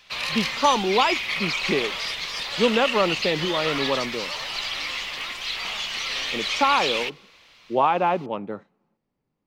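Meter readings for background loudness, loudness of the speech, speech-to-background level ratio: -26.0 LUFS, -24.0 LUFS, 2.0 dB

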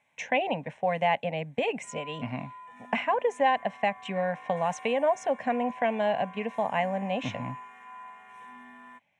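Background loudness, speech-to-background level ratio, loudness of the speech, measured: -46.0 LUFS, 17.0 dB, -29.0 LUFS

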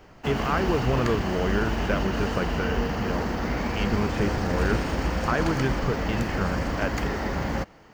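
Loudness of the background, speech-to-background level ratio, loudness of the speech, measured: -28.0 LUFS, -1.5 dB, -29.5 LUFS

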